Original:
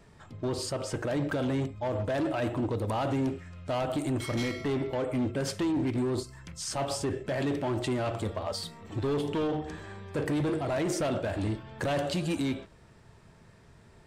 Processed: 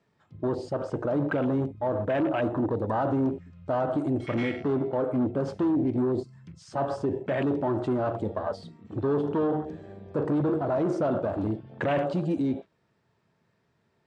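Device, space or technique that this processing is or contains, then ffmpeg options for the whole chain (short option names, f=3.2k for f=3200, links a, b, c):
over-cleaned archive recording: -af "highpass=130,lowpass=5.7k,afwtdn=0.0141,volume=4dB"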